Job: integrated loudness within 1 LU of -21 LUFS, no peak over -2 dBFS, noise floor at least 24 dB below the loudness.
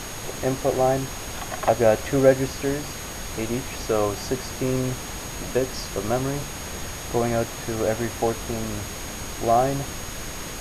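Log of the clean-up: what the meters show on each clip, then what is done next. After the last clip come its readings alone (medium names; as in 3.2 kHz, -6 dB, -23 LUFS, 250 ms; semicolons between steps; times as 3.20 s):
steady tone 6.6 kHz; tone level -40 dBFS; noise floor -34 dBFS; noise floor target -50 dBFS; loudness -25.5 LUFS; peak level -5.0 dBFS; loudness target -21.0 LUFS
-> band-stop 6.6 kHz, Q 30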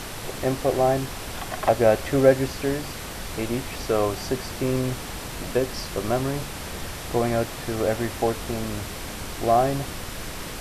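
steady tone not found; noise floor -35 dBFS; noise floor target -50 dBFS
-> noise print and reduce 15 dB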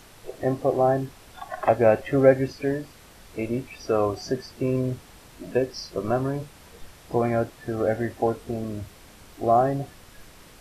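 noise floor -50 dBFS; loudness -25.0 LUFS; peak level -5.0 dBFS; loudness target -21.0 LUFS
-> trim +4 dB; peak limiter -2 dBFS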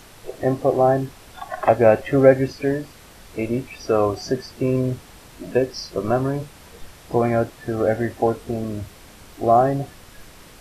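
loudness -21.0 LUFS; peak level -2.0 dBFS; noise floor -46 dBFS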